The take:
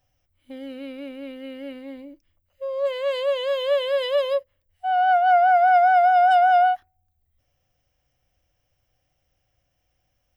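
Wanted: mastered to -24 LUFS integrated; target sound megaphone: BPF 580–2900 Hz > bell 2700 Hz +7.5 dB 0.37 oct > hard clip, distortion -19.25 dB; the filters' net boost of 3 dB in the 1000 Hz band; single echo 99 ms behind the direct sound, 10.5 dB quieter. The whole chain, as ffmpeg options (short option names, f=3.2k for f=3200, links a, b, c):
-af "highpass=580,lowpass=2.9k,equalizer=f=1k:t=o:g=8,equalizer=f=2.7k:t=o:w=0.37:g=7.5,aecho=1:1:99:0.299,asoftclip=type=hard:threshold=-9.5dB,volume=-7dB"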